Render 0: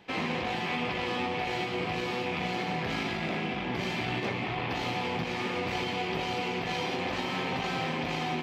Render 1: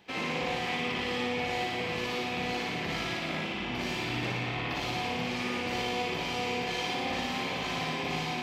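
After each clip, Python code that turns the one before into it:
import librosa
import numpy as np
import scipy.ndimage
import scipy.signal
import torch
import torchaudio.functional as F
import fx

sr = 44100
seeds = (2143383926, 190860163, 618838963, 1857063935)

y = fx.high_shelf(x, sr, hz=3900.0, db=7.5)
y = fx.room_flutter(y, sr, wall_m=9.8, rt60_s=1.1)
y = y * librosa.db_to_amplitude(-4.5)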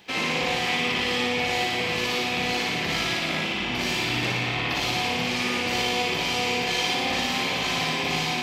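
y = fx.high_shelf(x, sr, hz=2500.0, db=8.0)
y = y * librosa.db_to_amplitude(4.5)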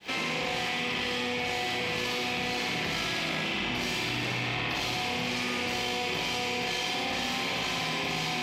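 y = fx.fade_in_head(x, sr, length_s=1.06)
y = fx.env_flatten(y, sr, amount_pct=100)
y = y * librosa.db_to_amplitude(-7.5)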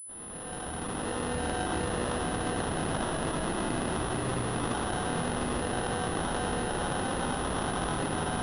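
y = fx.fade_in_head(x, sr, length_s=1.43)
y = fx.sample_hold(y, sr, seeds[0], rate_hz=2300.0, jitter_pct=0)
y = fx.pwm(y, sr, carrier_hz=10000.0)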